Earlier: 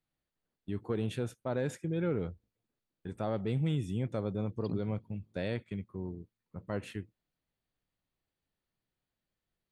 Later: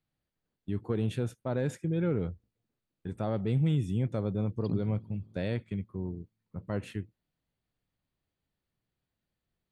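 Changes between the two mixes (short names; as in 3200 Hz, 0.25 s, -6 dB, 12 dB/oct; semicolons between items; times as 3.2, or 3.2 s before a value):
second voice: send +9.0 dB; master: add bell 110 Hz +5 dB 2.7 oct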